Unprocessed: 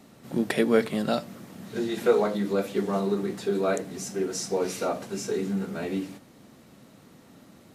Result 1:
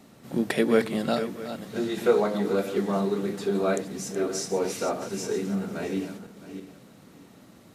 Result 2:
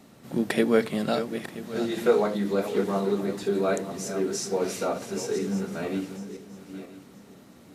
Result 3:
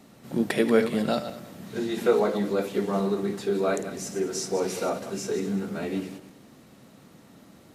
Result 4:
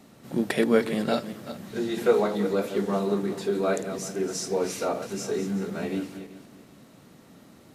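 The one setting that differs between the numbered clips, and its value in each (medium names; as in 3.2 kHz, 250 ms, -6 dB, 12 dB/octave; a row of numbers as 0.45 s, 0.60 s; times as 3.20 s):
backward echo that repeats, time: 330 ms, 490 ms, 100 ms, 190 ms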